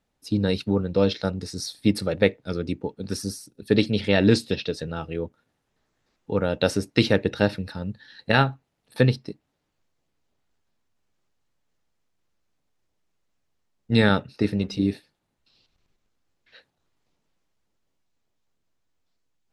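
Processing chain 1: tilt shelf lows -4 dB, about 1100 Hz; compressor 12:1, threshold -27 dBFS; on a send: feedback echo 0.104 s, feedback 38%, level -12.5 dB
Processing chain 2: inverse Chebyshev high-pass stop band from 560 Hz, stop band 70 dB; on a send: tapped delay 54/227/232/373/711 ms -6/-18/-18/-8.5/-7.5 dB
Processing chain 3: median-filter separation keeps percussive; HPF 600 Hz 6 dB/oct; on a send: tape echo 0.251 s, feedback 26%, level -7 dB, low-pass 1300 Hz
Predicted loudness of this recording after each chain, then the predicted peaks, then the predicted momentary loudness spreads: -33.5, -33.0, -30.0 LUFS; -12.0, -11.0, -6.5 dBFS; 10, 16, 14 LU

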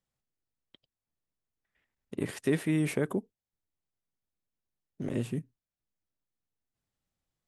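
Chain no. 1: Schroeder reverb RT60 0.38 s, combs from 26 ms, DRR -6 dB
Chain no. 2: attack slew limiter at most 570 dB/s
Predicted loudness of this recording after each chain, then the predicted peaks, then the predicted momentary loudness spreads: -25.0, -33.0 LUFS; -7.5, -16.0 dBFS; 14, 10 LU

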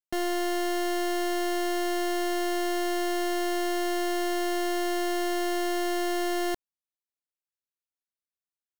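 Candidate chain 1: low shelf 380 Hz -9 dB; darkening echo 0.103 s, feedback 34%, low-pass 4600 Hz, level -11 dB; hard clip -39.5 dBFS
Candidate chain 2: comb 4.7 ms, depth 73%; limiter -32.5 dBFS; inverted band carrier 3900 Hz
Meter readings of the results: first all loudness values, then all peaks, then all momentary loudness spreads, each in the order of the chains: -40.5, -32.5 LUFS; -39.5, -26.0 dBFS; 0, 0 LU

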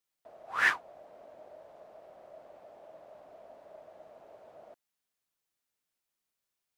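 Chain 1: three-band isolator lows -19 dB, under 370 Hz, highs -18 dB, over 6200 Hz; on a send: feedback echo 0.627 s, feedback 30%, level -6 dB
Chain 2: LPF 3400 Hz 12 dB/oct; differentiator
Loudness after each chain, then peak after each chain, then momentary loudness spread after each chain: -32.5, -40.0 LUFS; -12.5, -24.5 dBFS; 25, 14 LU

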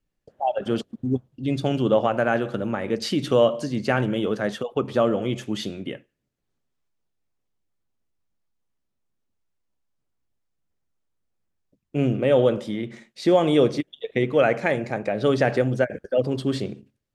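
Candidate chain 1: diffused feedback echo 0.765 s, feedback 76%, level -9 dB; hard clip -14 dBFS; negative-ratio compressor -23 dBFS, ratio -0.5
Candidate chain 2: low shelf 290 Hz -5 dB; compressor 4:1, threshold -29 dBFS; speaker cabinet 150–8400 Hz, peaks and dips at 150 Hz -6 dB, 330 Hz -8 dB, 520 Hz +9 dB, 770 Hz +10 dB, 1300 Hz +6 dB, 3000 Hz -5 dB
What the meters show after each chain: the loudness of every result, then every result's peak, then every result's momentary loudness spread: -26.5, -29.0 LUFS; -12.0, -11.0 dBFS; 16, 12 LU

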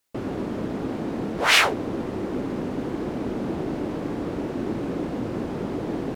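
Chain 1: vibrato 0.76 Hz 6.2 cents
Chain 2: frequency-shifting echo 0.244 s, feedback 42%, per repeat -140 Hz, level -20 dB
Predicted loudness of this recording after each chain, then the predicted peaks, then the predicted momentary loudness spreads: -26.0, -26.0 LUFS; -2.5, -2.5 dBFS; 12, 12 LU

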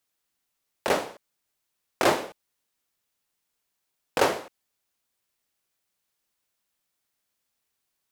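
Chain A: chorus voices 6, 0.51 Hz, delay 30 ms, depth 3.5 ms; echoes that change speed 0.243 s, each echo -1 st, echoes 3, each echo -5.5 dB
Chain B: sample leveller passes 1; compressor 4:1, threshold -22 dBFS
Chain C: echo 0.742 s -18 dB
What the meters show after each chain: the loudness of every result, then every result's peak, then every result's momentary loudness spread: -32.5, -29.5, -27.0 LUFS; -9.5, -8.5, -6.0 dBFS; 16, 13, 21 LU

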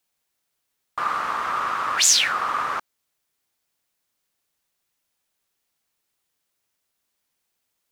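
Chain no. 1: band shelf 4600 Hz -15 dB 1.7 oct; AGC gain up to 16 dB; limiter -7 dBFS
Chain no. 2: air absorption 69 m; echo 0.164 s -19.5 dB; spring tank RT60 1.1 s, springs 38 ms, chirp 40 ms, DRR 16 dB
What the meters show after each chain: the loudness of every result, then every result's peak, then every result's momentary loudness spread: -15.5, -23.0 LUFS; -7.0, -8.0 dBFS; 5, 10 LU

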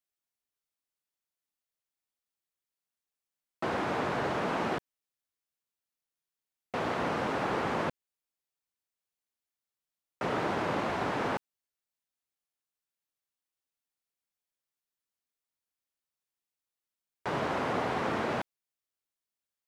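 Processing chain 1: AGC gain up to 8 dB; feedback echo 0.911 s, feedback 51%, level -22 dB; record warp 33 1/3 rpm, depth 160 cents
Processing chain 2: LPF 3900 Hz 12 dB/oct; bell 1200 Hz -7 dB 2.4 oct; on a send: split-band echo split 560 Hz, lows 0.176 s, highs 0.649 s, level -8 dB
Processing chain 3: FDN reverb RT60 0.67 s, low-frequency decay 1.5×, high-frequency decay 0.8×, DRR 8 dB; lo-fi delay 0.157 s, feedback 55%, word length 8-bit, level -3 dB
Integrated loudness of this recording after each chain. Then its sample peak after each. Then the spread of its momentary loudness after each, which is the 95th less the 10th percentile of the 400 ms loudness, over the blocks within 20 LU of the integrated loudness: -24.5, -37.0, -30.0 LUFS; -11.0, -22.0, -16.0 dBFS; 7, 17, 12 LU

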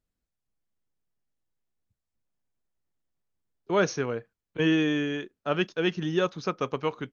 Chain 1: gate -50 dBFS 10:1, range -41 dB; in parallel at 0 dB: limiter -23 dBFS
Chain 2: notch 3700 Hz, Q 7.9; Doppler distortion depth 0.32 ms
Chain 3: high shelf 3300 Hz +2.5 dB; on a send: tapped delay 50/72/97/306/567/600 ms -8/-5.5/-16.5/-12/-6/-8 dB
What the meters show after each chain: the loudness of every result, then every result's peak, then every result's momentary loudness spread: -24.5, -28.0, -24.5 LUFS; -10.0, -12.0, -9.5 dBFS; 8, 8, 7 LU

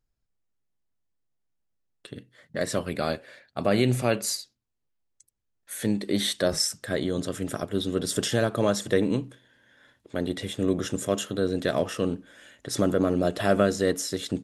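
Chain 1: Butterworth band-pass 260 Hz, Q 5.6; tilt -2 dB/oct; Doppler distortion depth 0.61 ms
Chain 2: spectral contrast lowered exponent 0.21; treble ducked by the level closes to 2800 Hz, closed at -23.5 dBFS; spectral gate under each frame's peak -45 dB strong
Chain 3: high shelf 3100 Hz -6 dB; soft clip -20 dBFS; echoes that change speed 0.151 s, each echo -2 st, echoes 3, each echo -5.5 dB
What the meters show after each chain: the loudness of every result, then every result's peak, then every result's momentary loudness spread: -33.5, -29.5, -30.0 LUFS; -17.0, -7.0, -16.5 dBFS; 14, 13, 9 LU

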